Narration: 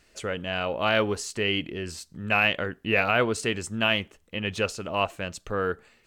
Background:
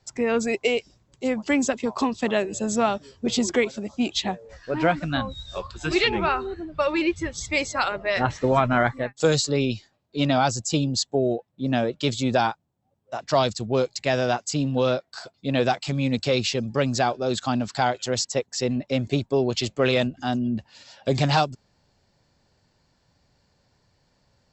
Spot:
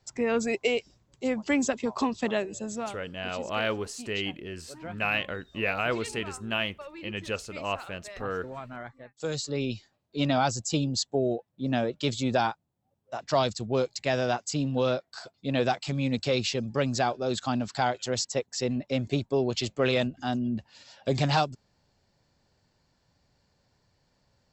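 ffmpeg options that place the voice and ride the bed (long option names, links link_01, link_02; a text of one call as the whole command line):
ffmpeg -i stem1.wav -i stem2.wav -filter_complex "[0:a]adelay=2700,volume=-5.5dB[link_01];[1:a]volume=12.5dB,afade=type=out:start_time=2.2:duration=0.83:silence=0.149624,afade=type=in:start_time=9.04:duration=0.87:silence=0.158489[link_02];[link_01][link_02]amix=inputs=2:normalize=0" out.wav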